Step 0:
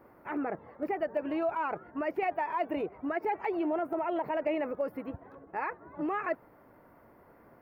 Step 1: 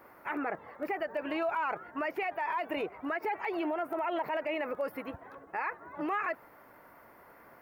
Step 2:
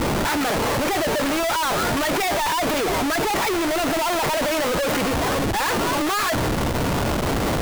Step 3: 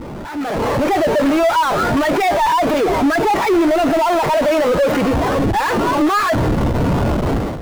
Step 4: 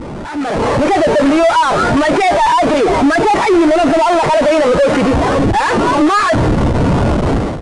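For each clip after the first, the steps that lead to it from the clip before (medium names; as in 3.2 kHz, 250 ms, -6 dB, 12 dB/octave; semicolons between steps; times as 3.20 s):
tilt shelf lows -7.5 dB, about 720 Hz; peak limiter -27 dBFS, peak gain reduction 9 dB; trim +2.5 dB
Schmitt trigger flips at -53 dBFS; companded quantiser 2-bit; trim +3 dB
level rider gain up to 9.5 dB; spectral contrast expander 1.5:1; trim +2 dB
resampled via 22.05 kHz; trim +4 dB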